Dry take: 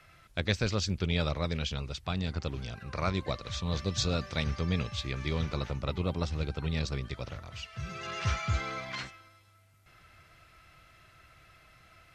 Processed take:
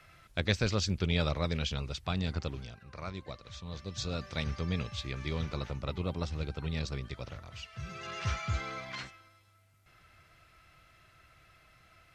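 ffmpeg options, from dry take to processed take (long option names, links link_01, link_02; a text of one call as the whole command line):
ffmpeg -i in.wav -af "volume=7dB,afade=type=out:start_time=2.36:duration=0.43:silence=0.316228,afade=type=in:start_time=3.82:duration=0.58:silence=0.446684" out.wav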